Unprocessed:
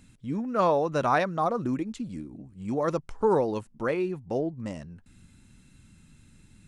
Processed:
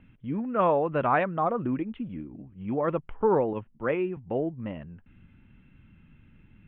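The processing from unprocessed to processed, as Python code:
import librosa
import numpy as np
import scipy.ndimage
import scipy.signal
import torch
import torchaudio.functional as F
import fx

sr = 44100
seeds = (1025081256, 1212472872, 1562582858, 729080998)

y = scipy.signal.sosfilt(scipy.signal.butter(12, 3200.0, 'lowpass', fs=sr, output='sos'), x)
y = fx.band_widen(y, sr, depth_pct=70, at=(3.53, 4.17))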